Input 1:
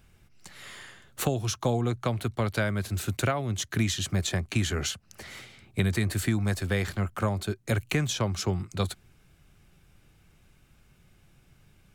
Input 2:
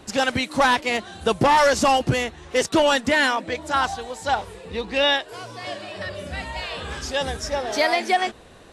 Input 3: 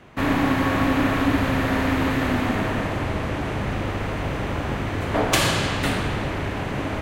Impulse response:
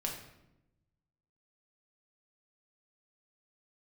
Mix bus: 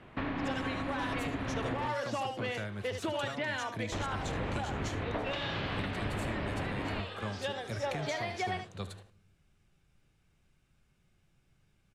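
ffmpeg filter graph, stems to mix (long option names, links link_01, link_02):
-filter_complex "[0:a]lowpass=10000,volume=-12dB,asplit=3[link_01][link_02][link_03];[link_02]volume=-15.5dB[link_04];[link_03]volume=-14.5dB[link_05];[1:a]highpass=280,adelay=300,volume=-8.5dB,asplit=2[link_06][link_07];[link_07]volume=-10.5dB[link_08];[2:a]volume=-5.5dB,asplit=3[link_09][link_10][link_11];[link_09]atrim=end=1.88,asetpts=PTS-STARTPTS,afade=type=out:start_time=1.876:duration=0.004:curve=hsin[link_12];[link_10]atrim=start=1.88:end=3.92,asetpts=PTS-STARTPTS,volume=0[link_13];[link_11]atrim=start=3.92,asetpts=PTS-STARTPTS,afade=type=in:duration=0.004:curve=hsin[link_14];[link_12][link_13][link_14]concat=n=3:v=0:a=1[link_15];[link_06][link_15]amix=inputs=2:normalize=0,lowpass=frequency=4000:width=0.5412,lowpass=frequency=4000:width=1.3066,acompressor=threshold=-27dB:ratio=6,volume=0dB[link_16];[3:a]atrim=start_sample=2205[link_17];[link_04][link_17]afir=irnorm=-1:irlink=0[link_18];[link_05][link_08]amix=inputs=2:normalize=0,aecho=0:1:74:1[link_19];[link_01][link_16][link_18][link_19]amix=inputs=4:normalize=0,alimiter=level_in=0.5dB:limit=-24dB:level=0:latency=1:release=433,volume=-0.5dB"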